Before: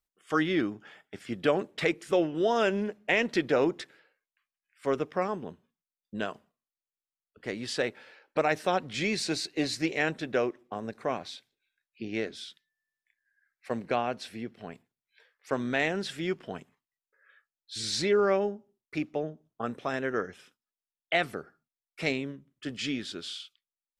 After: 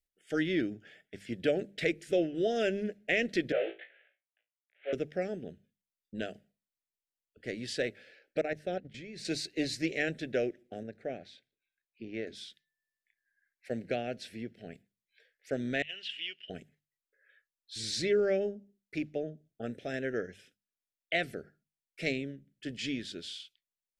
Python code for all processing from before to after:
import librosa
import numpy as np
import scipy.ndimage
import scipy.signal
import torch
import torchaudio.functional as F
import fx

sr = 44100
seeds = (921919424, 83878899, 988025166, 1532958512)

y = fx.chain(x, sr, fx.cvsd(bps=16000),
    fx.highpass(hz=510.0, slope=24),
    fx.room_flutter(wall_m=3.1, rt60_s=0.22), at=(3.52, 4.93))
y = fx.chain(y, sr, fx.high_shelf(hz=2700.0, db=-10.5),
    fx.level_steps(step_db=14), at=(8.41, 9.25))
y = fx.chain(y, sr, fx.lowpass(hz=1600.0, slope=6),
    fx.low_shelf(hz=460.0, db=-4.5), at=(10.83, 12.27))
y = fx.chain(y, sr, fx.lowpass_res(hz=2900.0, q=16.0),
    fx.differentiator(),
    fx.over_compress(threshold_db=-35.0, ratio=-0.5), at=(15.82, 16.5))
y = scipy.signal.sosfilt(scipy.signal.cheby1(2, 1.0, [620.0, 1700.0], 'bandstop', fs=sr, output='sos'), y)
y = fx.low_shelf(y, sr, hz=100.0, db=7.0)
y = fx.hum_notches(y, sr, base_hz=50, count=4)
y = y * 10.0 ** (-3.0 / 20.0)